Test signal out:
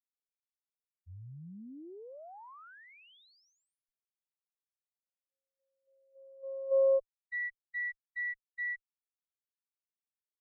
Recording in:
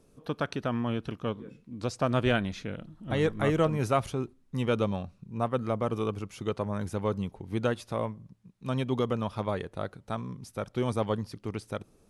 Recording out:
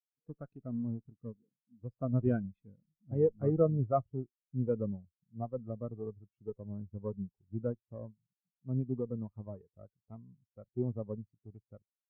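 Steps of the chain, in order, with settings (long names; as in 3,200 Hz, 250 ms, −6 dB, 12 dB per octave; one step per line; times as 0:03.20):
harmonic generator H 4 −26 dB, 8 −22 dB, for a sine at −12.5 dBFS
treble cut that deepens with the level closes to 2,600 Hz, closed at −25.5 dBFS
every bin expanded away from the loudest bin 2.5 to 1
level −3 dB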